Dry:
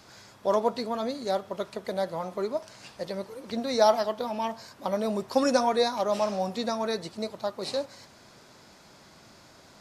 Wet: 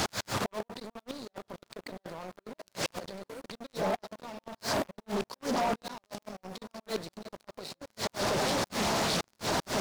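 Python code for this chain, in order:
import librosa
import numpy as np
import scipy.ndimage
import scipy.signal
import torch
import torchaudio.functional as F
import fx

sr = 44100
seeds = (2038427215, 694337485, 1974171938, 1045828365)

p1 = fx.over_compress(x, sr, threshold_db=-37.0, ratio=-1.0)
p2 = p1 + fx.echo_alternate(p1, sr, ms=724, hz=1700.0, feedback_pct=75, wet_db=-10, dry=0)
p3 = fx.level_steps(p2, sr, step_db=12)
p4 = fx.quant_dither(p3, sr, seeds[0], bits=8, dither='none')
p5 = p3 + (p4 * 10.0 ** (-4.0 / 20.0))
p6 = fx.gate_flip(p5, sr, shuts_db=-32.0, range_db=-30)
p7 = fx.dynamic_eq(p6, sr, hz=790.0, q=3.2, threshold_db=-53.0, ratio=4.0, max_db=5)
p8 = fx.leveller(p7, sr, passes=5)
p9 = fx.doppler_dist(p8, sr, depth_ms=0.61)
y = p9 * 10.0 ** (3.0 / 20.0)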